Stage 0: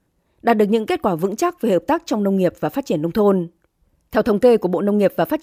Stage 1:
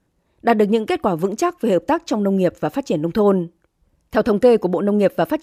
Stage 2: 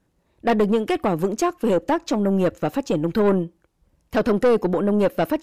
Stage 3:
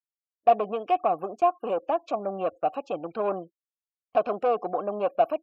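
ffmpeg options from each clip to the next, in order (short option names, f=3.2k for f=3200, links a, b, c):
-af "lowpass=11k"
-af "aeval=exprs='(tanh(3.98*val(0)+0.25)-tanh(0.25))/3.98':c=same"
-filter_complex "[0:a]afftfilt=real='re*gte(hypot(re,im),0.00891)':imag='im*gte(hypot(re,im),0.00891)':win_size=1024:overlap=0.75,asplit=3[a][b][c];[a]bandpass=f=730:t=q:w=8,volume=0dB[d];[b]bandpass=f=1.09k:t=q:w=8,volume=-6dB[e];[c]bandpass=f=2.44k:t=q:w=8,volume=-9dB[f];[d][e][f]amix=inputs=3:normalize=0,agate=range=-26dB:threshold=-47dB:ratio=16:detection=peak,volume=6dB"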